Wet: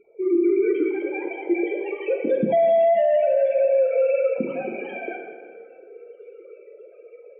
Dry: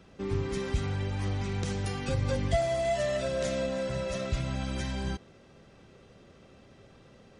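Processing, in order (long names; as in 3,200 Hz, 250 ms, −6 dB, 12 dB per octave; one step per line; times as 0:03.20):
three sine waves on the formant tracks
hollow resonant body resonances 210/330/2,300 Hz, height 16 dB, ringing for 25 ms
spectral peaks only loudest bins 16
dense smooth reverb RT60 1.8 s, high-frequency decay 0.75×, DRR 1.5 dB
automatic gain control gain up to 7 dB
0:02.57–0:03.65: low-shelf EQ 360 Hz −9 dB
brickwall limiter −13 dBFS, peak gain reduction 9.5 dB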